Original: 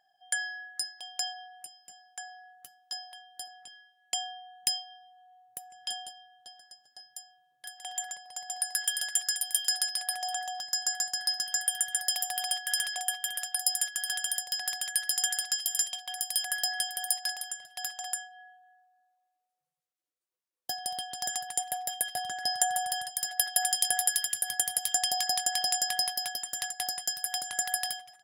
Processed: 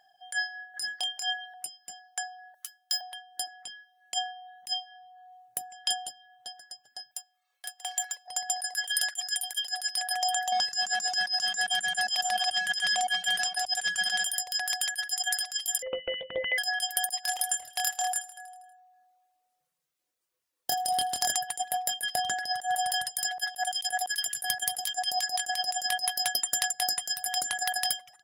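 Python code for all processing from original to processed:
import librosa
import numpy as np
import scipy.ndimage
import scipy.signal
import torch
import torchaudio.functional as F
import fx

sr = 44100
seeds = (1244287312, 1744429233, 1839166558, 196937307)

y = fx.chain(x, sr, fx.hum_notches(base_hz=60, count=9),
    fx.over_compress(threshold_db=-38.0, ratio=-1.0),
    fx.doubler(ms=28.0, db=-4.5), at=(0.74, 1.54))
y = fx.chain(y, sr, fx.median_filter(points=3),
    fx.highpass(hz=1100.0, slope=12),
    fx.high_shelf(hz=6500.0, db=8.5), at=(2.54, 3.01))
y = fx.chain(y, sr, fx.law_mismatch(coded='A'),
    fx.cheby2_highpass(hz=240.0, order=4, stop_db=40), at=(7.11, 8.28))
y = fx.chain(y, sr, fx.law_mismatch(coded='mu'),
    fx.over_compress(threshold_db=-34.0, ratio=-1.0),
    fx.lowpass(hz=6600.0, slope=12), at=(10.52, 14.24))
y = fx.chain(y, sr, fx.highpass(hz=250.0, slope=12),
    fx.freq_invert(carrier_hz=3700), at=(15.82, 16.58))
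y = fx.chain(y, sr, fx.doubler(ms=26.0, db=-4.0),
    fx.echo_feedback(ms=80, feedback_pct=58, wet_db=-11.5), at=(17.22, 21.32))
y = fx.hum_notches(y, sr, base_hz=50, count=8)
y = fx.dereverb_blind(y, sr, rt60_s=0.56)
y = fx.over_compress(y, sr, threshold_db=-33.0, ratio=-0.5)
y = F.gain(torch.from_numpy(y), 5.5).numpy()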